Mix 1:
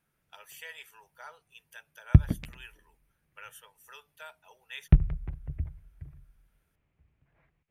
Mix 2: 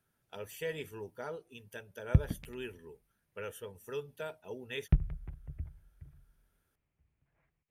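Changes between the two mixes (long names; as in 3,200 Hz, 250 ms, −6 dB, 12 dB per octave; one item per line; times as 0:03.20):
speech: remove high-pass filter 830 Hz 24 dB per octave
background −7.5 dB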